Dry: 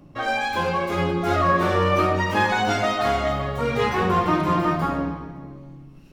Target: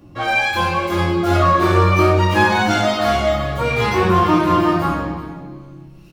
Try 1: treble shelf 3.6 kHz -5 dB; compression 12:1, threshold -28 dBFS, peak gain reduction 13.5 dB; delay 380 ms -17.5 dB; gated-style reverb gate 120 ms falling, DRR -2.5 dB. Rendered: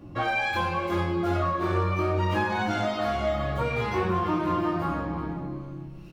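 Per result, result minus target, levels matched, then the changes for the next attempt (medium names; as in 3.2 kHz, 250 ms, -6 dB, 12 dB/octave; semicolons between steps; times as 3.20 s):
compression: peak gain reduction +13.5 dB; 8 kHz band -5.0 dB
remove: compression 12:1, threshold -28 dBFS, peak gain reduction 13.5 dB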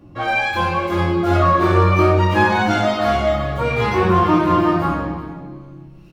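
8 kHz band -6.0 dB
change: treble shelf 3.6 kHz +3.5 dB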